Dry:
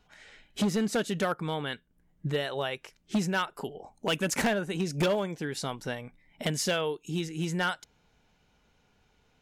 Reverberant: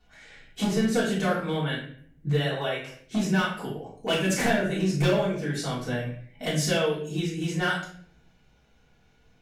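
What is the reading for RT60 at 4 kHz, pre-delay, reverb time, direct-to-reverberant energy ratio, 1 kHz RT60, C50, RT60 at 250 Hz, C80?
0.45 s, 3 ms, 0.55 s, -8.5 dB, 0.50 s, 4.5 dB, 0.90 s, 8.0 dB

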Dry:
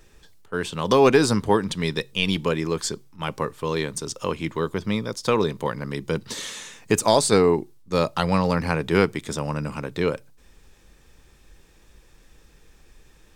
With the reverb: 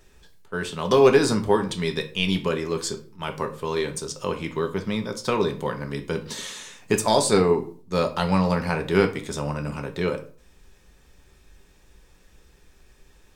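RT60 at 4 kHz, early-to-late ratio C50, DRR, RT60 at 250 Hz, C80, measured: 0.30 s, 13.0 dB, 4.5 dB, 0.50 s, 17.5 dB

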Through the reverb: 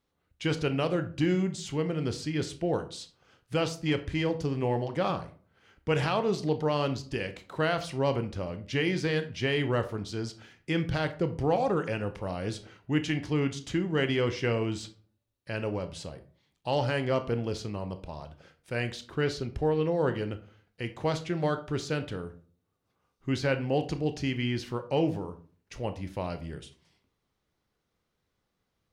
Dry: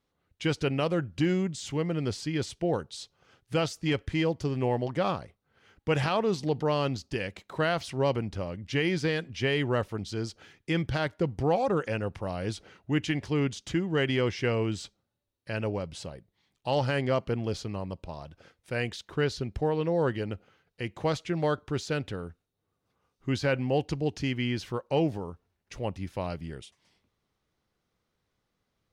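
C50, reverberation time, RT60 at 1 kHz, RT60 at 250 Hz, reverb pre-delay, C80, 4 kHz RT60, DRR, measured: 14.0 dB, 0.45 s, 0.40 s, 0.60 s, 24 ms, 18.5 dB, 0.25 s, 9.0 dB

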